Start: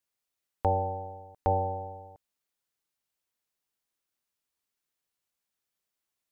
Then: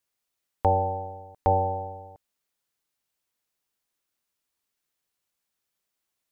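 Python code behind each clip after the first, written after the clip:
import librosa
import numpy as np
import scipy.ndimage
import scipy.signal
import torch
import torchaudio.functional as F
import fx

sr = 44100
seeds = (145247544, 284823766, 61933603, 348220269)

y = fx.dynamic_eq(x, sr, hz=1600.0, q=0.89, threshold_db=-43.0, ratio=4.0, max_db=4)
y = y * 10.0 ** (3.5 / 20.0)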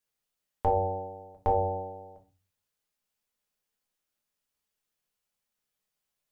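y = fx.room_shoebox(x, sr, seeds[0], volume_m3=150.0, walls='furnished', distance_m=1.4)
y = y * 10.0 ** (-5.0 / 20.0)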